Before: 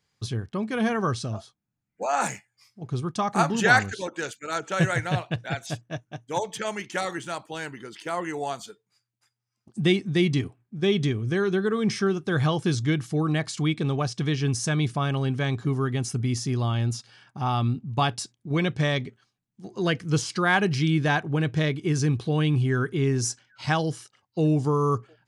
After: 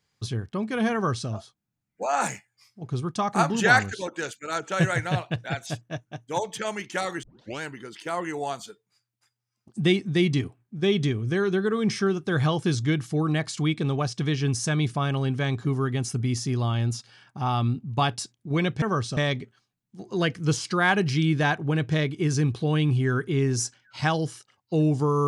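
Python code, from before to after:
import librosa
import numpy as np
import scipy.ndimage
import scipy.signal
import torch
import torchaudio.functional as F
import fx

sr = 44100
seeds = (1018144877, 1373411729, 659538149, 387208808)

y = fx.edit(x, sr, fx.duplicate(start_s=0.94, length_s=0.35, to_s=18.82),
    fx.tape_start(start_s=7.23, length_s=0.38), tone=tone)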